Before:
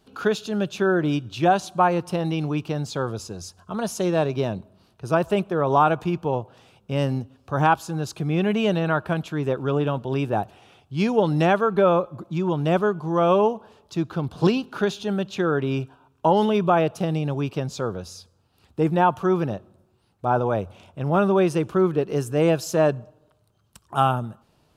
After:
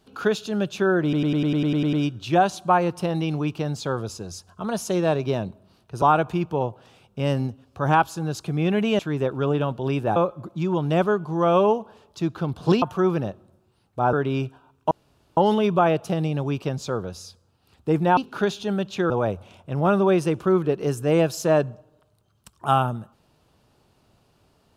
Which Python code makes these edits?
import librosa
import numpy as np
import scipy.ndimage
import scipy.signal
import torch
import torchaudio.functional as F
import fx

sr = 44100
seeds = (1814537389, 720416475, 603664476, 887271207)

y = fx.edit(x, sr, fx.stutter(start_s=1.03, slice_s=0.1, count=10),
    fx.cut(start_s=5.12, length_s=0.62),
    fx.cut(start_s=8.71, length_s=0.54),
    fx.cut(start_s=10.42, length_s=1.49),
    fx.swap(start_s=14.57, length_s=0.93, other_s=19.08, other_length_s=1.31),
    fx.insert_room_tone(at_s=16.28, length_s=0.46), tone=tone)